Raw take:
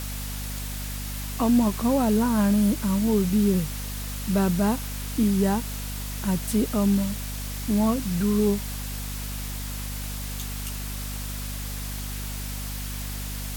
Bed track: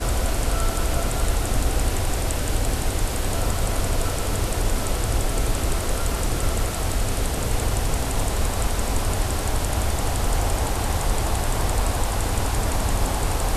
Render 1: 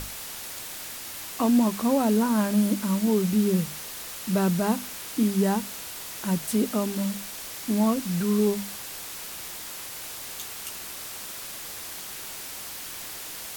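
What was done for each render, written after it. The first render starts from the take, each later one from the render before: hum notches 50/100/150/200/250 Hz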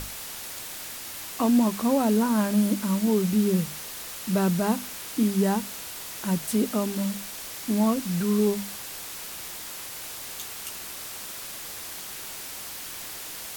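no audible change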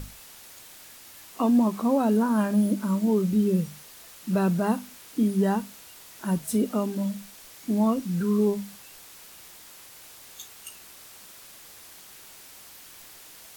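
noise print and reduce 10 dB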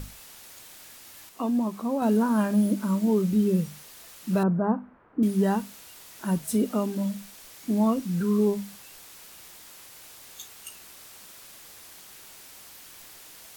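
1.29–2.02 s: gain -5 dB; 4.43–5.23 s: low-pass 1.4 kHz 24 dB/octave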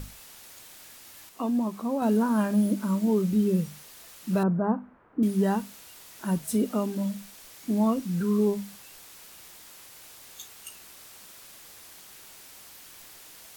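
trim -1 dB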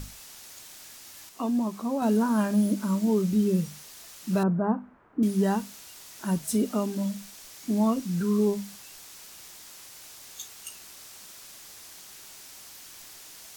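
peaking EQ 6 kHz +5 dB 1.1 oct; band-stop 500 Hz, Q 14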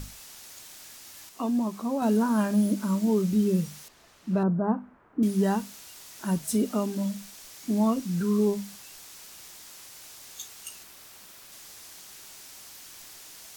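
3.88–4.68 s: low-pass 1.3 kHz 6 dB/octave; 10.83–11.52 s: peaking EQ 6.9 kHz -4.5 dB 1.7 oct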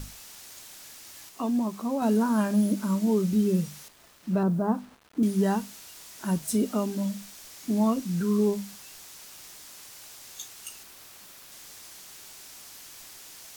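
vibrato 3.9 Hz 6.8 cents; bit crusher 9-bit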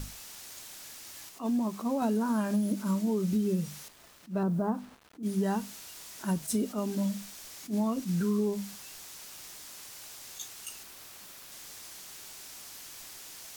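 compression, threshold -25 dBFS, peak gain reduction 7 dB; attacks held to a fixed rise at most 250 dB/s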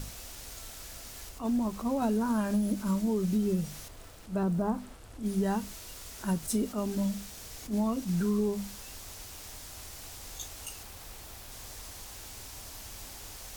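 add bed track -27.5 dB

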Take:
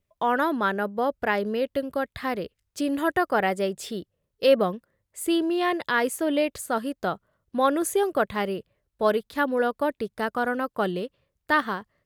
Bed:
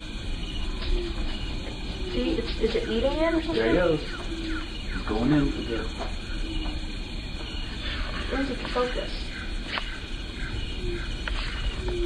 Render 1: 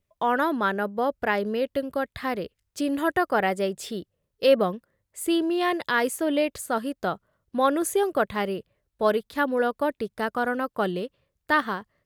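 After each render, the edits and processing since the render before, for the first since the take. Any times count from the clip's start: 5.60–6.11 s: tone controls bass 0 dB, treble +3 dB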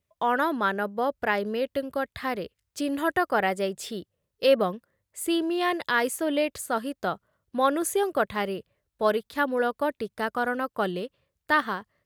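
high-pass 50 Hz; peaking EQ 230 Hz -2.5 dB 2.9 oct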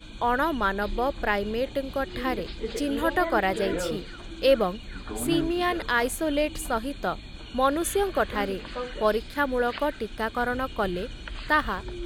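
add bed -7.5 dB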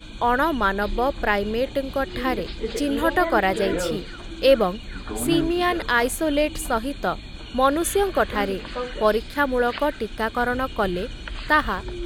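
trim +4 dB

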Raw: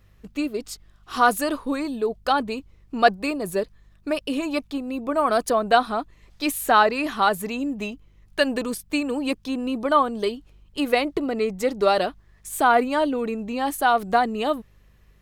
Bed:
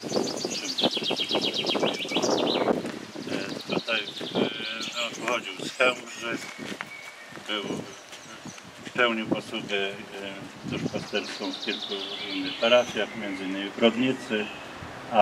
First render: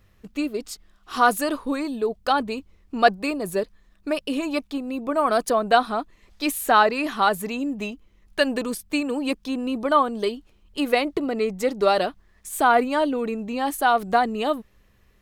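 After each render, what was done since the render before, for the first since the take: de-hum 50 Hz, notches 3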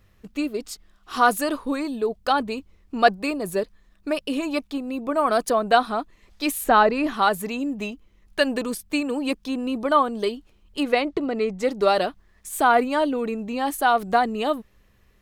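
6.64–7.14 s: tilt EQ -2 dB/octave; 10.83–11.63 s: distance through air 54 m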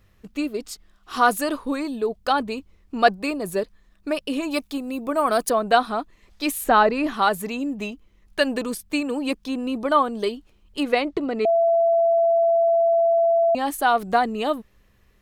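4.50–5.49 s: treble shelf 5.5 kHz -> 11 kHz +11 dB; 11.45–13.55 s: bleep 671 Hz -15 dBFS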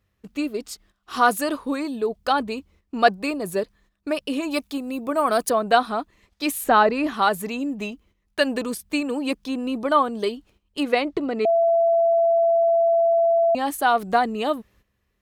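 high-pass 42 Hz; gate -54 dBFS, range -11 dB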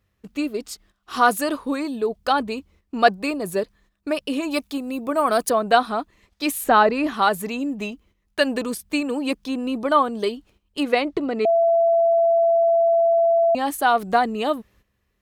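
trim +1 dB

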